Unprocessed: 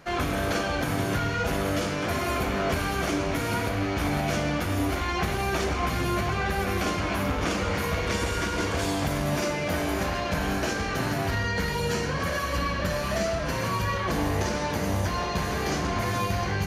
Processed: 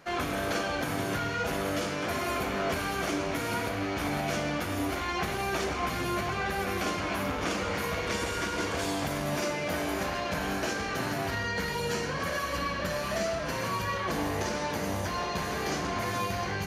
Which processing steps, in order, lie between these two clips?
low shelf 120 Hz -10 dB; gain -2.5 dB

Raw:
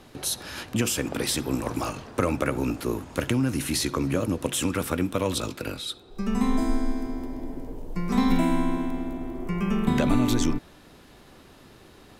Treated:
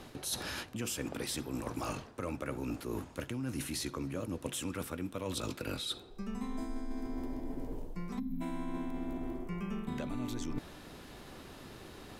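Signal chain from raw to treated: spectral gain 8.19–8.41, 290–11000 Hz -25 dB; reverse; compressor 12:1, threshold -35 dBFS, peak gain reduction 19.5 dB; reverse; gain +1 dB

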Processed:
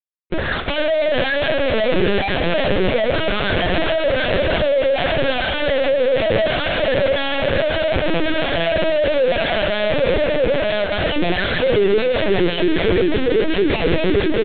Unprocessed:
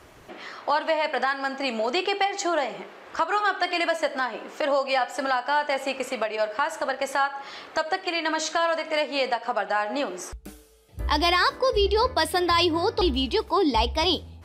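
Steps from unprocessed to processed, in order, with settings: regenerating reverse delay 0.604 s, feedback 61%, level -9 dB; gate with hold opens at -30 dBFS; spectral noise reduction 6 dB; FFT band-pass 250–1800 Hz; in parallel at -1.5 dB: limiter -21.5 dBFS, peak gain reduction 10.5 dB; on the sum: fuzz box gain 46 dB, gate -52 dBFS; fixed phaser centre 410 Hz, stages 4; on a send at -13 dB: reverb RT60 0.35 s, pre-delay 65 ms; on the sum: LPC vocoder at 8 kHz pitch kept; outdoor echo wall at 130 m, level -18 dB

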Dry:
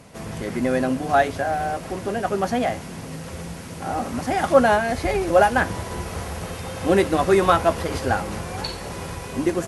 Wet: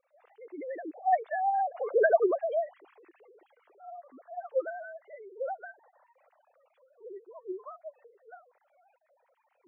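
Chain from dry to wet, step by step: sine-wave speech; Doppler pass-by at 1.99, 19 m/s, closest 2.5 m; spectral gate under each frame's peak -15 dB strong; gain +7 dB

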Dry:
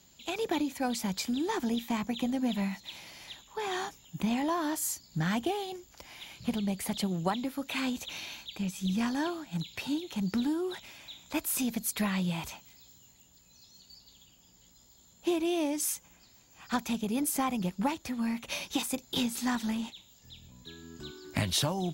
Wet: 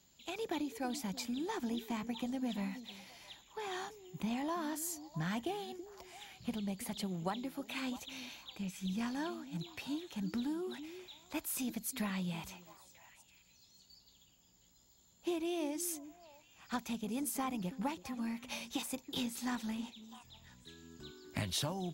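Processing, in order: delay with a stepping band-pass 0.328 s, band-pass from 330 Hz, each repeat 1.4 oct, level -10.5 dB; gain -7.5 dB

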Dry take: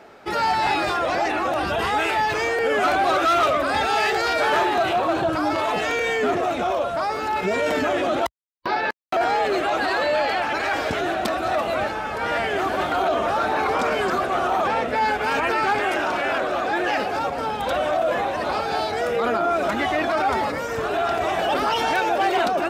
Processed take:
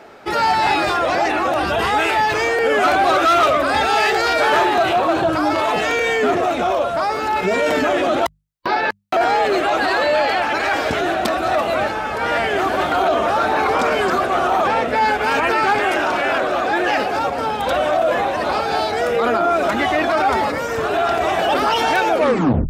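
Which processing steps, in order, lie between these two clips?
tape stop at the end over 0.60 s; notches 50/100/150/200 Hz; gain +4.5 dB

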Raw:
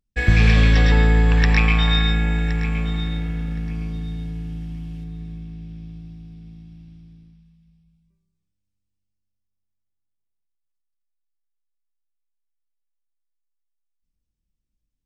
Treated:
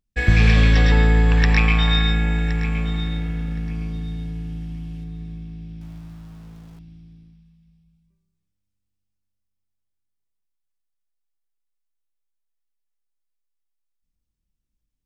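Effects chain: 5.81–6.79 sample gate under -47 dBFS

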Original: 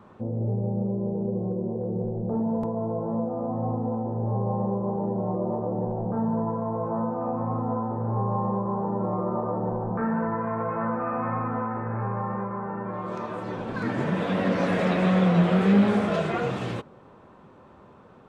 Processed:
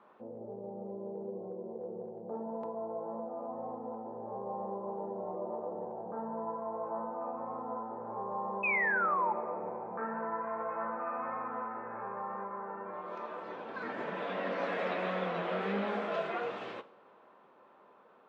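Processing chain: BPF 450–3600 Hz; painted sound fall, 8.63–9.33, 840–2600 Hz -24 dBFS; two-slope reverb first 0.49 s, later 3.6 s, from -22 dB, DRR 12.5 dB; gain -6.5 dB

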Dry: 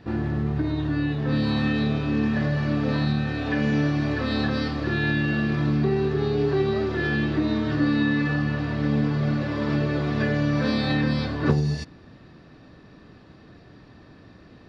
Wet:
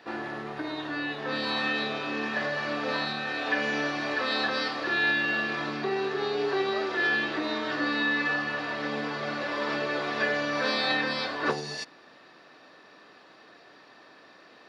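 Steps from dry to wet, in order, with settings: HPF 610 Hz 12 dB/oct; gain +3.5 dB

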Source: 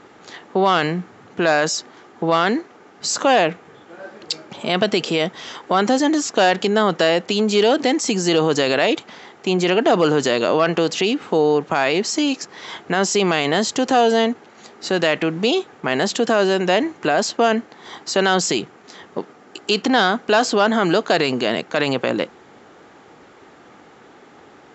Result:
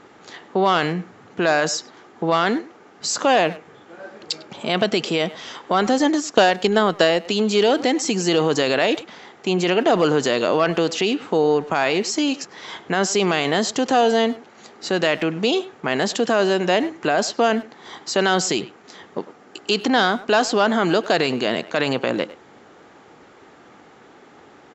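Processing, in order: speakerphone echo 0.1 s, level -16 dB; 5.98–7.25 transient shaper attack +5 dB, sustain -4 dB; gain -1.5 dB

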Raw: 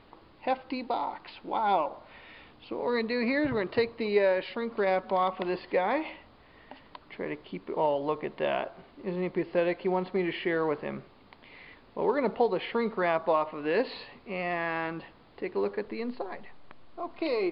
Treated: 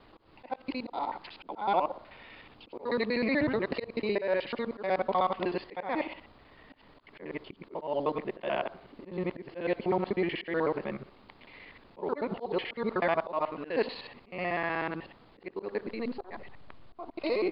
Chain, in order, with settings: local time reversal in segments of 62 ms; auto swell 0.168 s

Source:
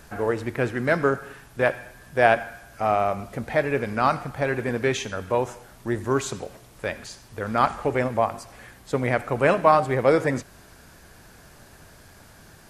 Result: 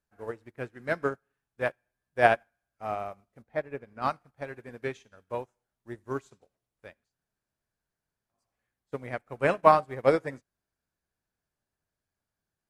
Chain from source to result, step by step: 3.42–4.02 high shelf 2400 Hz -9 dB; 7.07–8.36 room tone, crossfade 0.16 s; upward expander 2.5:1, over -39 dBFS

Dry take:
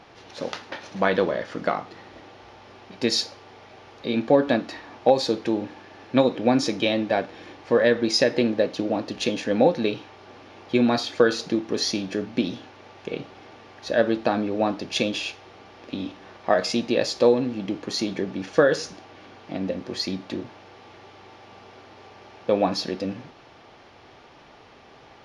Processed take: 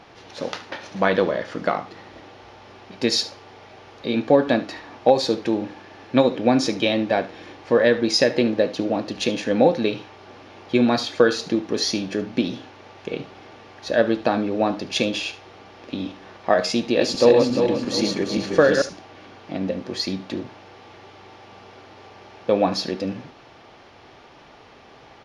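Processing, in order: 16.8–18.82 regenerating reverse delay 0.175 s, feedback 60%, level -3 dB; echo 73 ms -17 dB; gain +2 dB

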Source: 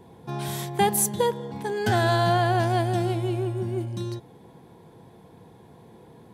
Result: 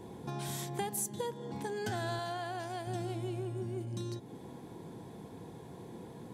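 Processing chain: bell 7100 Hz +6 dB 1 oct; compressor 3:1, threshold -39 dBFS, peak gain reduction 17 dB; band noise 120–400 Hz -52 dBFS; 2.19–2.87 low shelf 260 Hz -10.5 dB

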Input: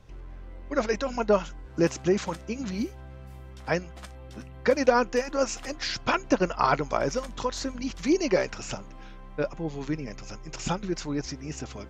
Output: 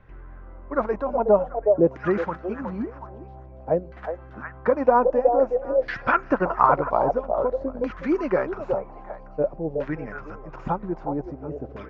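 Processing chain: delay with a stepping band-pass 0.368 s, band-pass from 580 Hz, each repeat 1.4 oct, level -2.5 dB; LFO low-pass saw down 0.51 Hz 530–1800 Hz

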